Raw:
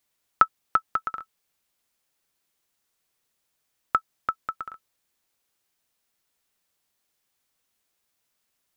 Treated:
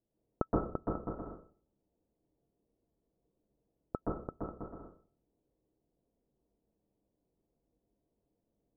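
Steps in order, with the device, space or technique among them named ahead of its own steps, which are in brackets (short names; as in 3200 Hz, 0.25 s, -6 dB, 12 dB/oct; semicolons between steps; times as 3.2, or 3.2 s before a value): next room (LPF 530 Hz 24 dB/oct; reverb RT60 0.45 s, pre-delay 0.118 s, DRR -5 dB); gain +5 dB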